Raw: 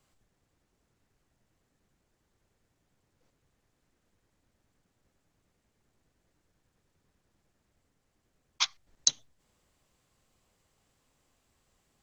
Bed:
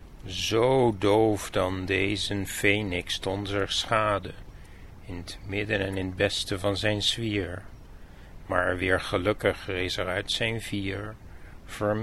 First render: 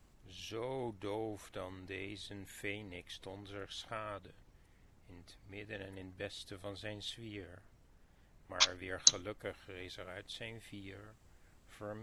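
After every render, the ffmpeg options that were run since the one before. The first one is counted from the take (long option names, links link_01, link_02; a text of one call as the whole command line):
ffmpeg -i in.wav -i bed.wav -filter_complex "[1:a]volume=-19dB[link_01];[0:a][link_01]amix=inputs=2:normalize=0" out.wav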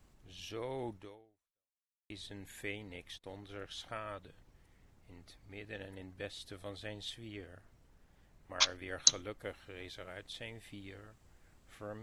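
ffmpeg -i in.wav -filter_complex "[0:a]asplit=3[link_01][link_02][link_03];[link_01]afade=type=out:start_time=3.15:duration=0.02[link_04];[link_02]agate=range=-26dB:threshold=-53dB:ratio=16:release=100:detection=peak,afade=type=in:start_time=3.15:duration=0.02,afade=type=out:start_time=3.65:duration=0.02[link_05];[link_03]afade=type=in:start_time=3.65:duration=0.02[link_06];[link_04][link_05][link_06]amix=inputs=3:normalize=0,asplit=2[link_07][link_08];[link_07]atrim=end=2.1,asetpts=PTS-STARTPTS,afade=type=out:start_time=0.96:duration=1.14:curve=exp[link_09];[link_08]atrim=start=2.1,asetpts=PTS-STARTPTS,afade=type=in:duration=0.004:curve=hsin[link_10];[link_09][link_10]concat=n=2:v=0:a=1" out.wav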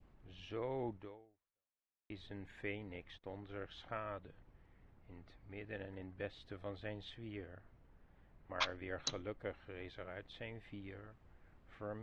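ffmpeg -i in.wav -af "lowpass=2200,adynamicequalizer=threshold=0.00178:dfrequency=1400:dqfactor=1.2:tfrequency=1400:tqfactor=1.2:attack=5:release=100:ratio=0.375:range=2:mode=cutabove:tftype=bell" out.wav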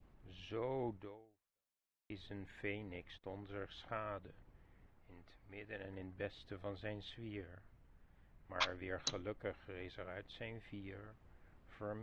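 ffmpeg -i in.wav -filter_complex "[0:a]asettb=1/sr,asplit=3[link_01][link_02][link_03];[link_01]atrim=end=4.864[link_04];[link_02]atrim=start=4.86:end=5.85,asetpts=PTS-STARTPTS,afade=type=in:duration=0.004:curve=qsin,afade=type=out:start_time=0.986:duration=0.004:curve=qsin,equalizer=frequency=120:width=0.31:gain=-6[link_05];[link_03]atrim=start=5.846[link_06];[link_04][link_05]acrossfade=duration=0.004:curve1=hsin:curve2=qsin[link_07];[link_07][link_06]acrossfade=duration=0.004:curve1=qsin:curve2=hsin,asettb=1/sr,asplit=3[link_08][link_09][link_10];[link_08]atrim=end=7.414[link_11];[link_09]atrim=start=7.41:end=8.56,asetpts=PTS-STARTPTS,afade=type=in:duration=0.004:curve=qsin,afade=type=out:start_time=1.146:duration=0.004:curve=qsin,equalizer=frequency=480:width=0.51:gain=-4.5[link_12];[link_10]atrim=start=8.556[link_13];[link_11][link_12]acrossfade=duration=0.004:curve1=hsin:curve2=qsin[link_14];[link_14][link_13]acrossfade=duration=0.004:curve1=qsin:curve2=hsin" out.wav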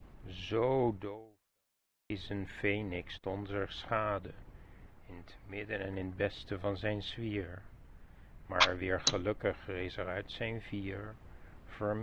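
ffmpeg -i in.wav -af "volume=10.5dB" out.wav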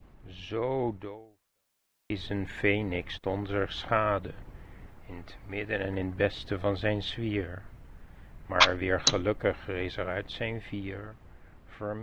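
ffmpeg -i in.wav -af "dynaudnorm=framelen=260:gausssize=13:maxgain=7dB" out.wav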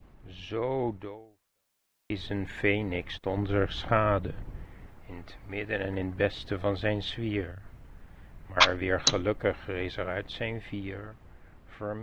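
ffmpeg -i in.wav -filter_complex "[0:a]asettb=1/sr,asplit=3[link_01][link_02][link_03];[link_01]atrim=end=3.374[link_04];[link_02]atrim=start=3.37:end=4.65,asetpts=PTS-STARTPTS,afade=type=in:duration=0.004:curve=qsin,afade=type=out:start_time=1.276:duration=0.004:curve=qsin,lowshelf=frequency=360:gain=6.5[link_05];[link_03]atrim=start=4.646[link_06];[link_04][link_05]acrossfade=duration=0.004:curve1=hsin:curve2=qsin[link_07];[link_07][link_06]acrossfade=duration=0.004:curve1=qsin:curve2=hsin,asettb=1/sr,asplit=3[link_08][link_09][link_10];[link_08]atrim=end=7.514[link_11];[link_09]atrim=start=7.51:end=8.57,asetpts=PTS-STARTPTS,afade=type=in:duration=0.004:curve=qsin,afade=type=out:start_time=1.056:duration=0.004:curve=qsin,acrossover=split=140|3000[link_12][link_13][link_14];[link_13]acompressor=threshold=-49dB:ratio=4:attack=3.2:release=140:knee=2.83:detection=peak[link_15];[link_12][link_15][link_14]amix=inputs=3:normalize=0[link_16];[link_10]atrim=start=8.566[link_17];[link_11][link_16]acrossfade=duration=0.004:curve1=hsin:curve2=qsin[link_18];[link_18][link_17]acrossfade=duration=0.004:curve1=qsin:curve2=hsin" out.wav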